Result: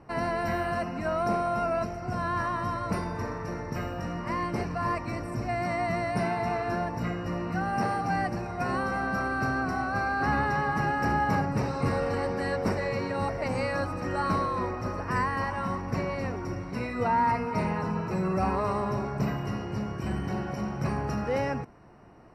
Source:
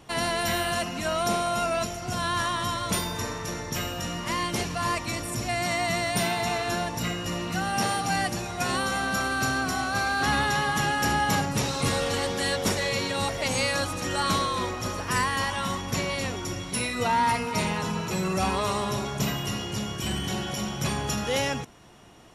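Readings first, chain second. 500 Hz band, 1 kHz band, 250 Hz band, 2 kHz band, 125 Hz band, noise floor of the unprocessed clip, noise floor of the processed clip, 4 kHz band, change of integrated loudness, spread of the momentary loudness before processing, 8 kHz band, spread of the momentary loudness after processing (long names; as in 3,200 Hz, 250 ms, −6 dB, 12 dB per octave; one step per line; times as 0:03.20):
−0.5 dB, −1.0 dB, 0.0 dB, −4.5 dB, 0.0 dB, −35 dBFS, −37 dBFS, −16.5 dB, −2.5 dB, 6 LU, −19.0 dB, 7 LU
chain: moving average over 13 samples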